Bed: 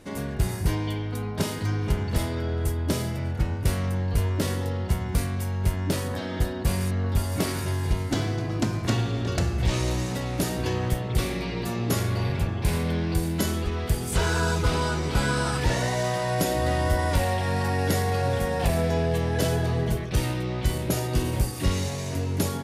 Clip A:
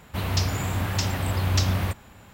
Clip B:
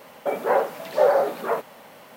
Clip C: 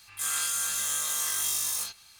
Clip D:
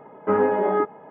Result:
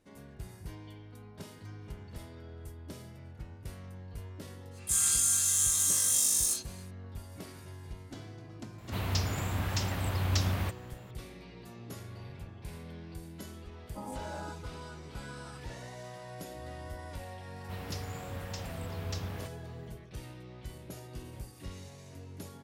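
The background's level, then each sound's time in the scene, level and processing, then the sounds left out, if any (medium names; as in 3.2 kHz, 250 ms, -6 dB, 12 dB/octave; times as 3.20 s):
bed -19.5 dB
4.70 s: add C -9.5 dB, fades 0.10 s + peaking EQ 8 kHz +14.5 dB 1.6 oct
8.78 s: add A -6.5 dB
13.68 s: add D -16.5 dB + static phaser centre 410 Hz, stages 6
17.55 s: add A -15.5 dB
not used: B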